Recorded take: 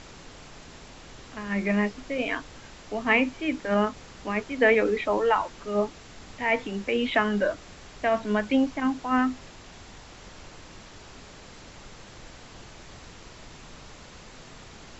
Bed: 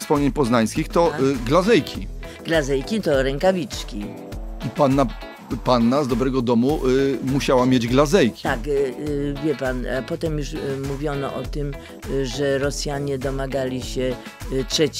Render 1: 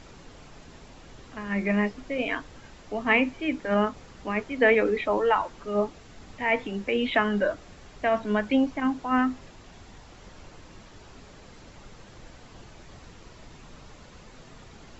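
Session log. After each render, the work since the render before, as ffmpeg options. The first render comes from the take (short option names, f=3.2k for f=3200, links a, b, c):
-af "afftdn=nr=6:nf=-47"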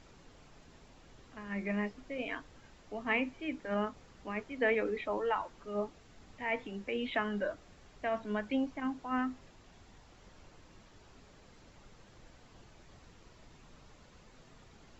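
-af "volume=-10dB"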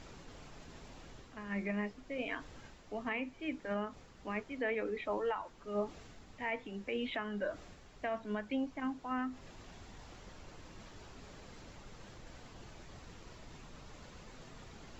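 -af "areverse,acompressor=mode=upward:threshold=-44dB:ratio=2.5,areverse,alimiter=level_in=2.5dB:limit=-24dB:level=0:latency=1:release=411,volume=-2.5dB"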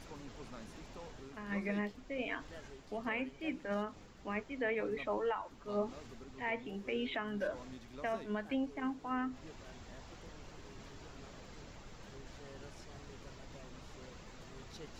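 -filter_complex "[1:a]volume=-34dB[a];[0:a][a]amix=inputs=2:normalize=0"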